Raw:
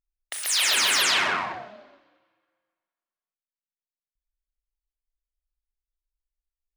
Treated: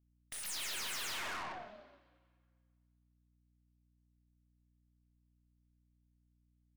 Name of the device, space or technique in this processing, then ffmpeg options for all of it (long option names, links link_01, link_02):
valve amplifier with mains hum: -af "aeval=exprs='(tanh(44.7*val(0)+0.45)-tanh(0.45))/44.7':channel_layout=same,aeval=exprs='val(0)+0.000501*(sin(2*PI*60*n/s)+sin(2*PI*2*60*n/s)/2+sin(2*PI*3*60*n/s)/3+sin(2*PI*4*60*n/s)/4+sin(2*PI*5*60*n/s)/5)':channel_layout=same,volume=-6.5dB"